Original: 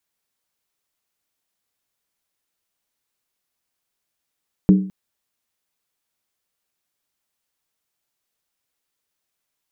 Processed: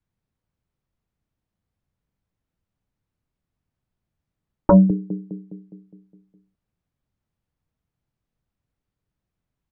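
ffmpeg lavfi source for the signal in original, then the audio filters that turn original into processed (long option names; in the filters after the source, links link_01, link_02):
-f lavfi -i "aevalsrc='0.531*pow(10,-3*t/0.46)*sin(2*PI*190*t)+0.211*pow(10,-3*t/0.364)*sin(2*PI*302.9*t)+0.0841*pow(10,-3*t/0.315)*sin(2*PI*405.8*t)+0.0335*pow(10,-3*t/0.304)*sin(2*PI*436.2*t)+0.0133*pow(10,-3*t/0.282)*sin(2*PI*504.1*t)':duration=0.21:sample_rate=44100"
-filter_complex "[0:a]lowpass=frequency=1000:poles=1,acrossover=split=180|680[link_01][link_02][link_03];[link_01]aeval=exprs='0.355*sin(PI/2*5.62*val(0)/0.355)':channel_layout=same[link_04];[link_02]aecho=1:1:206|412|618|824|1030|1236|1442|1648:0.631|0.353|0.198|0.111|0.0621|0.0347|0.0195|0.0109[link_05];[link_04][link_05][link_03]amix=inputs=3:normalize=0"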